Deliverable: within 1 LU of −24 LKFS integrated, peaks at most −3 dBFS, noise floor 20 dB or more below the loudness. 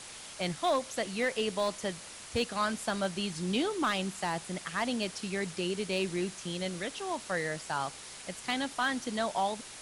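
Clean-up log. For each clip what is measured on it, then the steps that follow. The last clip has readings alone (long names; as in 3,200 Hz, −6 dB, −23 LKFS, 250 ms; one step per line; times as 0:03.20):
share of clipped samples 0.3%; peaks flattened at −21.5 dBFS; background noise floor −47 dBFS; target noise floor −53 dBFS; integrated loudness −33.0 LKFS; sample peak −21.5 dBFS; target loudness −24.0 LKFS
→ clipped peaks rebuilt −21.5 dBFS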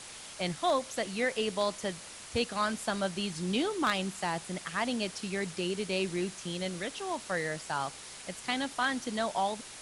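share of clipped samples 0.0%; background noise floor −47 dBFS; target noise floor −53 dBFS
→ broadband denoise 6 dB, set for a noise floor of −47 dBFS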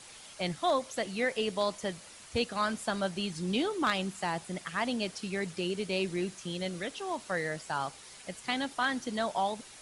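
background noise floor −51 dBFS; target noise floor −53 dBFS
→ broadband denoise 6 dB, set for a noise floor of −51 dBFS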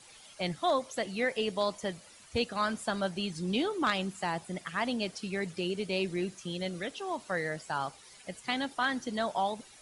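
background noise floor −55 dBFS; integrated loudness −33.0 LKFS; sample peak −12.5 dBFS; target loudness −24.0 LKFS
→ level +9 dB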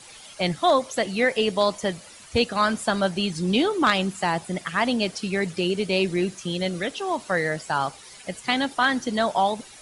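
integrated loudness −24.0 LKFS; sample peak −3.5 dBFS; background noise floor −46 dBFS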